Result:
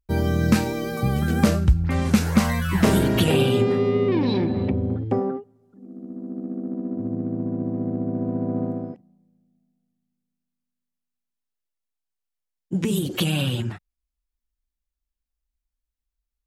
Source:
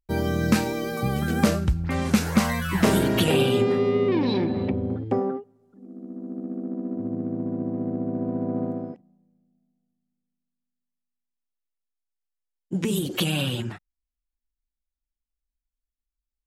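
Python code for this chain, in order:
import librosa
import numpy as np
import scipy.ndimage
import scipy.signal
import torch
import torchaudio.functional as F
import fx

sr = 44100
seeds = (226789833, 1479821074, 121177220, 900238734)

y = fx.peak_eq(x, sr, hz=64.0, db=6.5, octaves=2.6)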